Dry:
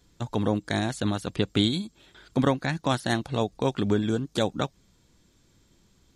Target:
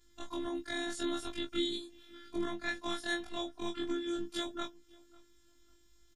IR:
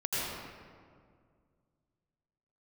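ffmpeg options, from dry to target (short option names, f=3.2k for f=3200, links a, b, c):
-filter_complex "[0:a]afftfilt=real='re':imag='-im':win_size=2048:overlap=0.75,alimiter=limit=-22dB:level=0:latency=1:release=313,equalizer=f=460:t=o:w=0.97:g=-9.5,afftfilt=real='hypot(re,im)*cos(PI*b)':imag='0':win_size=512:overlap=0.75,asplit=2[a][b];[b]adelay=18,volume=-6dB[c];[a][c]amix=inputs=2:normalize=0,asplit=2[d][e];[e]adelay=546,lowpass=f=2.8k:p=1,volume=-23.5dB,asplit=2[f][g];[g]adelay=546,lowpass=f=2.8k:p=1,volume=0.26[h];[d][f][h]amix=inputs=3:normalize=0,volume=3dB"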